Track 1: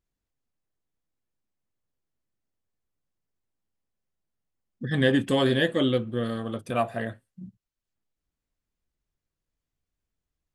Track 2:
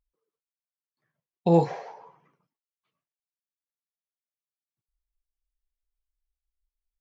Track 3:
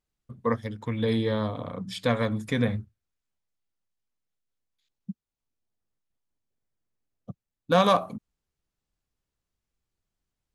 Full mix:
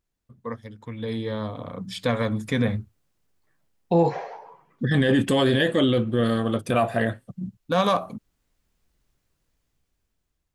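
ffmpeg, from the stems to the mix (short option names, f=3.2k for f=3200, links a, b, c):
-filter_complex "[0:a]volume=2.5dB[a];[1:a]bass=f=250:g=-3,treble=f=4k:g=-6,adelay=2450,volume=-2.5dB[b];[2:a]volume=-7.5dB[c];[a][b][c]amix=inputs=3:normalize=0,dynaudnorm=f=500:g=7:m=13dB,alimiter=limit=-11.5dB:level=0:latency=1:release=16"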